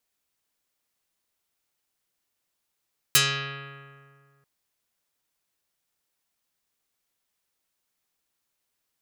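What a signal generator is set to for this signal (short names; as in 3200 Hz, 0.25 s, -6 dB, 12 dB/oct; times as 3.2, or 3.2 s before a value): plucked string C#3, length 1.29 s, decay 2.12 s, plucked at 0.48, dark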